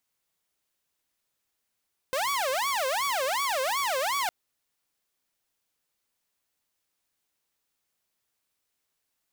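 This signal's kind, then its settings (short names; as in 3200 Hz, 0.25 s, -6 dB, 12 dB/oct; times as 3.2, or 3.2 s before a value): siren wail 515–1140 Hz 2.7/s saw -23 dBFS 2.16 s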